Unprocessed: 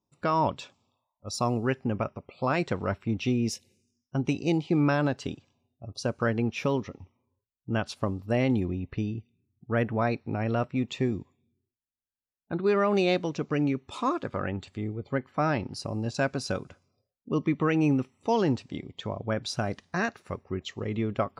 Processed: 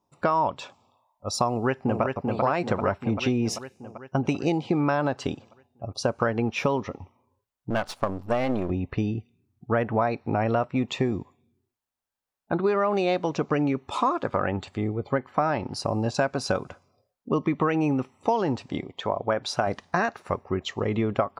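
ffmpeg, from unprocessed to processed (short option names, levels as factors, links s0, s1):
-filter_complex "[0:a]asplit=2[s0][s1];[s1]afade=t=in:st=1.49:d=0.01,afade=t=out:st=2.02:d=0.01,aecho=0:1:390|780|1170|1560|1950|2340|2730|3120|3510|3900:0.530884|0.345075|0.224299|0.145794|0.0947662|0.061598|0.0400387|0.0260252|0.0169164|0.0109956[s2];[s0][s2]amix=inputs=2:normalize=0,asettb=1/sr,asplit=3[s3][s4][s5];[s3]atrim=end=7.704[s6];[s4]atrim=start=7.7:end=8.7,asetpts=PTS-STARTPTS,afade=t=in:d=0.004:c=qsin,afade=t=out:st=0.996:d=0.004:c=qsin,aeval=exprs='if(lt(val(0),0),0.251*val(0),val(0))':c=same[s7];[s5]atrim=start=8.696[s8];[s6][s7]acrossfade=d=0.004:c1=hsin:c2=qsin[s9];[s9][s8]acrossfade=d=0.004:c1=qsin:c2=hsin,asettb=1/sr,asplit=3[s10][s11][s12];[s10]atrim=end=18.844[s13];[s11]atrim=start=18.84:end=19.67,asetpts=PTS-STARTPTS,afade=t=in:d=0.004:c=qsin,afade=t=out:st=0.826:d=0.004:c=qsin,bass=f=250:g=-7,treble=f=4000:g=-3[s14];[s12]atrim=start=19.666[s15];[s13][s14]acrossfade=d=0.004:c1=hsin:c2=qsin[s16];[s16][s15]acrossfade=d=0.004:c1=qsin:c2=hsin,equalizer=f=850:w=0.81:g=9.5,acompressor=threshold=0.0631:ratio=6,volume=1.58"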